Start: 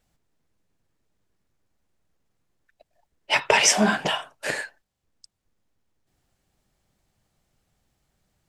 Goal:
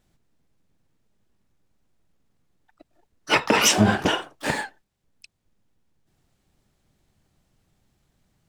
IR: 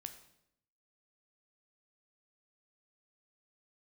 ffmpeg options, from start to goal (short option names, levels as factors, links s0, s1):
-filter_complex "[0:a]asplit=3[s0][s1][s2];[s1]asetrate=22050,aresample=44100,atempo=2,volume=0.708[s3];[s2]asetrate=88200,aresample=44100,atempo=0.5,volume=0.2[s4];[s0][s3][s4]amix=inputs=3:normalize=0,equalizer=f=170:w=0.69:g=5.5,alimiter=limit=0.531:level=0:latency=1:release=210"